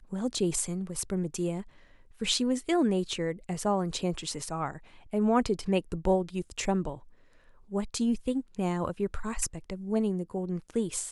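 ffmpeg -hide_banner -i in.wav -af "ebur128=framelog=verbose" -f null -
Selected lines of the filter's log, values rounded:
Integrated loudness:
  I:         -30.6 LUFS
  Threshold: -41.0 LUFS
Loudness range:
  LRA:         2.6 LU
  Threshold: -50.8 LUFS
  LRA low:   -32.5 LUFS
  LRA high:  -29.8 LUFS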